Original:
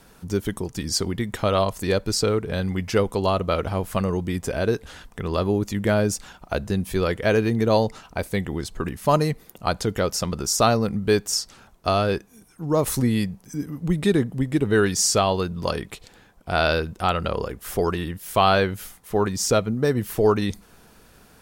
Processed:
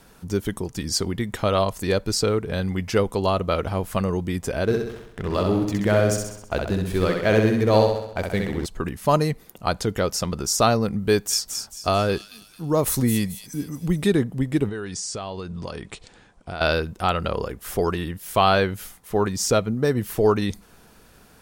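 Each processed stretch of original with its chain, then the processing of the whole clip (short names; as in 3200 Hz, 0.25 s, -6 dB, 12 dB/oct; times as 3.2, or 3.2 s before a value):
4.64–8.66 backlash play -34 dBFS + feedback echo 65 ms, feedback 54%, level -4 dB
10.99–14.08 high shelf 12000 Hz +8 dB + thin delay 0.22 s, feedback 38%, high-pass 3800 Hz, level -6 dB
14.69–16.61 steep low-pass 9800 Hz 96 dB/oct + compressor, threshold -28 dBFS
whole clip: dry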